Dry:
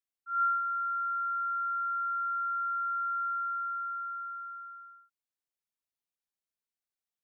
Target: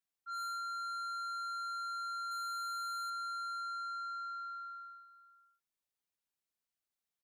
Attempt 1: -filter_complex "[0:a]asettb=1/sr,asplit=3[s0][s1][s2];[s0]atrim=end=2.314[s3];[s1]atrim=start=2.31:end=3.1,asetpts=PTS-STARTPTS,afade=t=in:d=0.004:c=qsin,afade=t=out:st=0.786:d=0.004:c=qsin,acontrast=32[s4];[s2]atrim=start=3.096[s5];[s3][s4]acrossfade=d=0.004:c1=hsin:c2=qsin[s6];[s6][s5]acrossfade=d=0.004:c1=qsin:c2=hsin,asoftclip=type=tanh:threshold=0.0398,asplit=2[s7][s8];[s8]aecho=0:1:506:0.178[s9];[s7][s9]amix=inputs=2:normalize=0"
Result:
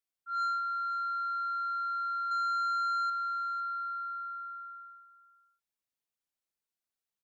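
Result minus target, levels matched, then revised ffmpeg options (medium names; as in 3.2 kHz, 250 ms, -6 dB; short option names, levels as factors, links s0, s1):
saturation: distortion -9 dB
-filter_complex "[0:a]asettb=1/sr,asplit=3[s0][s1][s2];[s0]atrim=end=2.314[s3];[s1]atrim=start=2.31:end=3.1,asetpts=PTS-STARTPTS,afade=t=in:d=0.004:c=qsin,afade=t=out:st=0.786:d=0.004:c=qsin,acontrast=32[s4];[s2]atrim=start=3.096[s5];[s3][s4]acrossfade=d=0.004:c1=hsin:c2=qsin[s6];[s6][s5]acrossfade=d=0.004:c1=qsin:c2=hsin,asoftclip=type=tanh:threshold=0.0112,asplit=2[s7][s8];[s8]aecho=0:1:506:0.178[s9];[s7][s9]amix=inputs=2:normalize=0"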